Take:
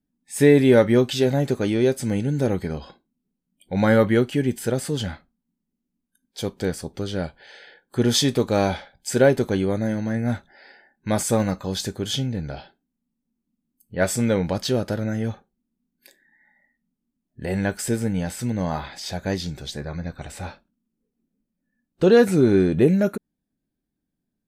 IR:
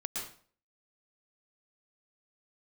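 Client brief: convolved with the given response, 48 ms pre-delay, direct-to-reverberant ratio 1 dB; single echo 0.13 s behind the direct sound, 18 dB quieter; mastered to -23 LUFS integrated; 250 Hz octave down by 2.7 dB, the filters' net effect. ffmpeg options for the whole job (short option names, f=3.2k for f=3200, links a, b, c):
-filter_complex "[0:a]equalizer=f=250:t=o:g=-3.5,aecho=1:1:130:0.126,asplit=2[a][b];[1:a]atrim=start_sample=2205,adelay=48[c];[b][c]afir=irnorm=-1:irlink=0,volume=-3dB[d];[a][d]amix=inputs=2:normalize=0,volume=-2dB"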